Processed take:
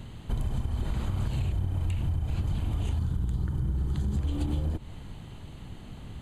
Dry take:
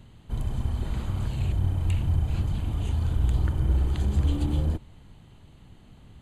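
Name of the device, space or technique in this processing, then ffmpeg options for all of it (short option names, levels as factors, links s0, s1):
serial compression, peaks first: -filter_complex "[0:a]asettb=1/sr,asplit=3[s0][s1][s2];[s0]atrim=end=2.994[s3];[s1]atrim=start=2.99:end=4.17,asetpts=PTS-STARTPTS,afade=t=in:d=0.004:c=qsin,afade=t=out:st=1.176:d=0.004:c=qsin,equalizer=f=160:t=o:w=0.67:g=9,equalizer=f=630:t=o:w=0.67:g=-6,equalizer=f=2500:t=o:w=0.67:g=-7[s4];[s2]atrim=start=4.166[s5];[s3][s4]acrossfade=d=0.004:c1=hsin:c2=qsin[s6];[s6][s5]acrossfade=d=0.004:c1=qsin:c2=hsin,acompressor=threshold=0.0398:ratio=6,acompressor=threshold=0.0178:ratio=2.5,volume=2.51"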